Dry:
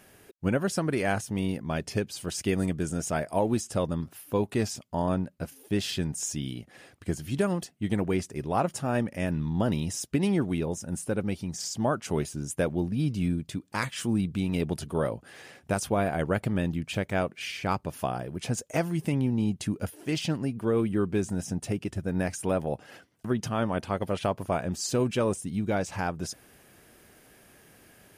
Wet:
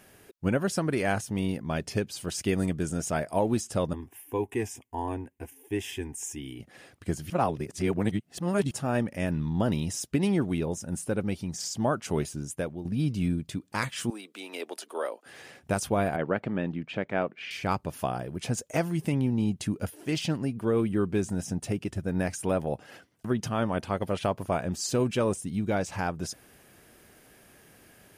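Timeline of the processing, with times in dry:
3.93–6.60 s: static phaser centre 880 Hz, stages 8
7.30–8.71 s: reverse
12.31–12.85 s: fade out linear, to -12 dB
14.10–15.26 s: Bessel high-pass 540 Hz, order 8
16.16–17.51 s: band-pass 180–2600 Hz

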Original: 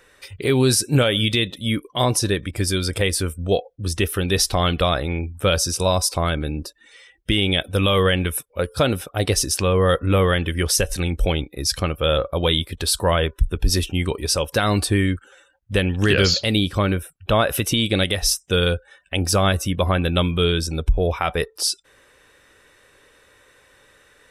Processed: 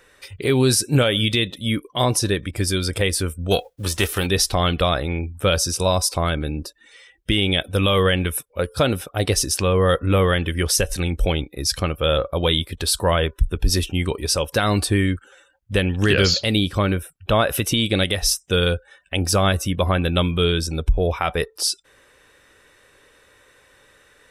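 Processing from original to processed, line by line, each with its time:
3.50–4.26 s: formants flattened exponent 0.6

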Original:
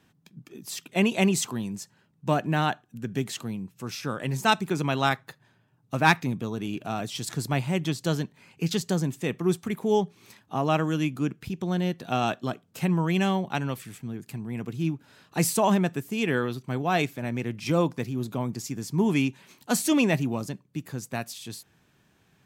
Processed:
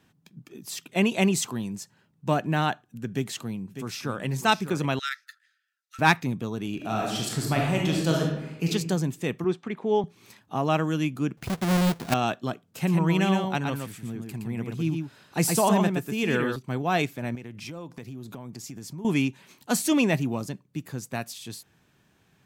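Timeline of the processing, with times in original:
3.08–4.25 s: echo throw 600 ms, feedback 15%, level -10 dB
4.99–5.99 s: rippled Chebyshev high-pass 1.3 kHz, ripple 6 dB
6.75–8.69 s: reverb throw, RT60 0.95 s, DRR -1.5 dB
9.44–10.04 s: band-pass 220–3200 Hz
11.37–12.14 s: square wave that keeps the level
12.65–16.56 s: delay 118 ms -4.5 dB
17.35–19.05 s: compression 8:1, threshold -35 dBFS

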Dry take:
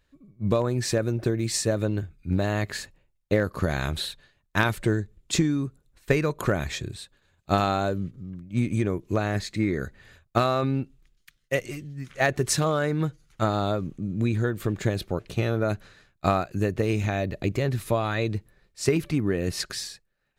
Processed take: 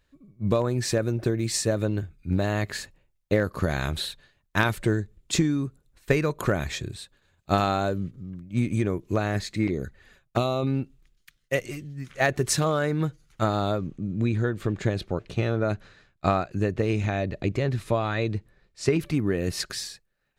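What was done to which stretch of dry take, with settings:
9.67–10.67 s: touch-sensitive flanger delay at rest 8.1 ms, full sweep at -23.5 dBFS
13.78–19.01 s: distance through air 54 m

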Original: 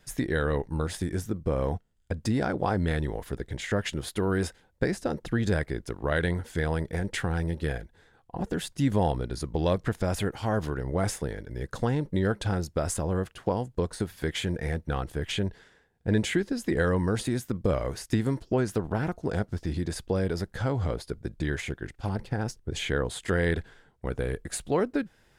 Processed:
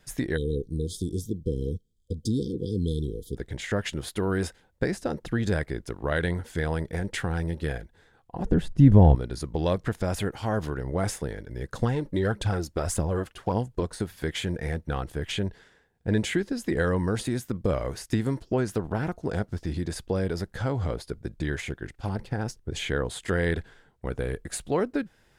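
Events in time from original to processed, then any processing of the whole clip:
0.37–3.36 s: spectral selection erased 510–3100 Hz
8.45–9.15 s: tilt EQ -4 dB/octave
11.81–13.83 s: phaser 1.7 Hz, delay 3.9 ms, feedback 46%

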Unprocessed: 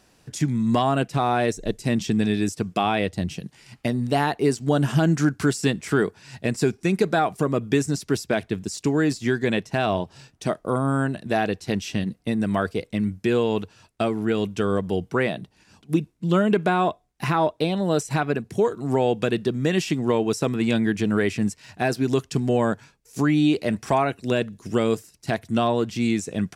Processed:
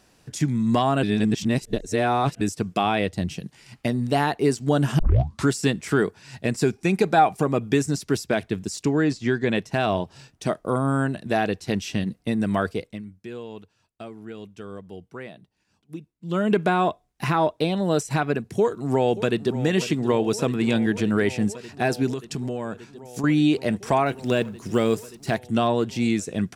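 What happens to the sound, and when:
1.03–2.41 s: reverse
4.99 s: tape start 0.49 s
6.75–7.72 s: small resonant body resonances 800/2400 Hz, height 8 dB, ringing for 25 ms
8.85–9.55 s: distance through air 72 m
12.71–16.53 s: dip -15 dB, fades 0.32 s
18.44–19.58 s: echo throw 580 ms, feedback 85%, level -14 dB
22.10–23.24 s: compression 5:1, threshold -25 dBFS
24.06–25.38 s: companding laws mixed up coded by mu

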